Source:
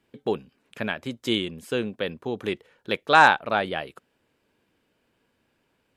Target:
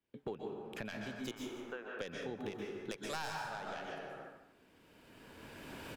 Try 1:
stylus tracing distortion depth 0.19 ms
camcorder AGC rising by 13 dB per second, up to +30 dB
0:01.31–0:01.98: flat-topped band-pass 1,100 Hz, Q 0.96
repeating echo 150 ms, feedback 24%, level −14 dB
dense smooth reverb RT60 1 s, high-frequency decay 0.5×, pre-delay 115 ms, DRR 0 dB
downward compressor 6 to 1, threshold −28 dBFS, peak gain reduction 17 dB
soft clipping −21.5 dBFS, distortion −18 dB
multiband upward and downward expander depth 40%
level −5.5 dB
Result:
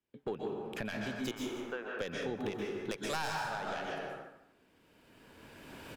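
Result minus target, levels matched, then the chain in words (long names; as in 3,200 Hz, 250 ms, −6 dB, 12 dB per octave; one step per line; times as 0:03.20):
downward compressor: peak gain reduction −6 dB
stylus tracing distortion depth 0.19 ms
camcorder AGC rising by 13 dB per second, up to +30 dB
0:01.31–0:01.98: flat-topped band-pass 1,100 Hz, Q 0.96
repeating echo 150 ms, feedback 24%, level −14 dB
dense smooth reverb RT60 1 s, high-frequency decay 0.5×, pre-delay 115 ms, DRR 0 dB
downward compressor 6 to 1, threshold −35 dBFS, peak gain reduction 22.5 dB
soft clipping −21.5 dBFS, distortion −26 dB
multiband upward and downward expander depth 40%
level −5.5 dB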